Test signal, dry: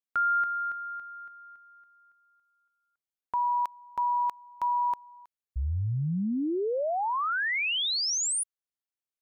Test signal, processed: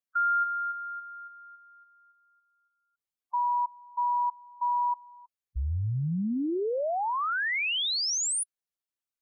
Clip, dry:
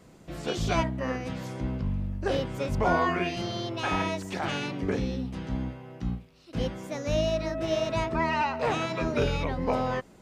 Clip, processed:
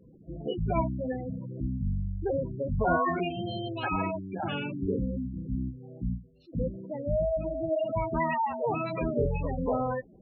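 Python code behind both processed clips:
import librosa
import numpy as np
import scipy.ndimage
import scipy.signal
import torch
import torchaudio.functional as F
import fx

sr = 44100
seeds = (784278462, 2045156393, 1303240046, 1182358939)

y = fx.spec_gate(x, sr, threshold_db=-10, keep='strong')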